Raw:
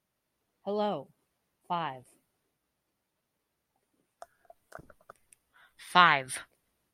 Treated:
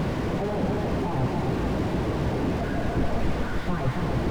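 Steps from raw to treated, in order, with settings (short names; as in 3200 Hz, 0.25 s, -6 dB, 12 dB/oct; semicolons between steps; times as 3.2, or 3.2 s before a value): delta modulation 64 kbps, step -29 dBFS; bell 5100 Hz +2.5 dB 0.8 oct; notch 1300 Hz, Q 11; de-hum 209.4 Hz, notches 27; sample leveller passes 5; plain phase-vocoder stretch 0.62×; air absorption 160 m; split-band echo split 990 Hz, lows 0.276 s, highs 0.12 s, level -5 dB; slew limiter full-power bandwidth 27 Hz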